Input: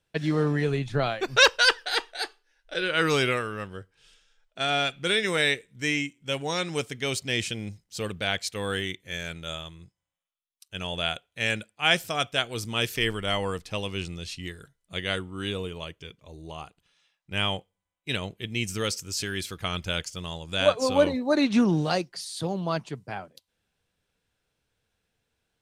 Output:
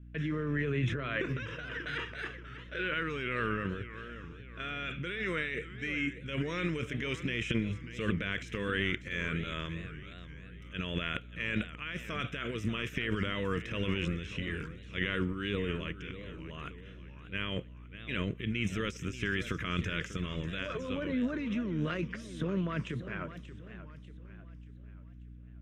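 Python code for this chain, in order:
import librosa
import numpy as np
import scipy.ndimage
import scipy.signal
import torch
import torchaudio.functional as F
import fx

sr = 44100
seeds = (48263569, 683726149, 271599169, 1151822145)

y = fx.highpass(x, sr, hz=200.0, slope=6)
y = fx.high_shelf(y, sr, hz=4300.0, db=6.0)
y = fx.over_compress(y, sr, threshold_db=-29.0, ratio=-1.0)
y = fx.transient(y, sr, attack_db=-3, sustain_db=12)
y = fx.add_hum(y, sr, base_hz=60, snr_db=17)
y = fx.air_absorb(y, sr, metres=200.0)
y = fx.fixed_phaser(y, sr, hz=1900.0, stages=4)
y = fx.echo_warbled(y, sr, ms=588, feedback_pct=44, rate_hz=2.8, cents=188, wet_db=-13.0)
y = F.gain(torch.from_numpy(y), -1.5).numpy()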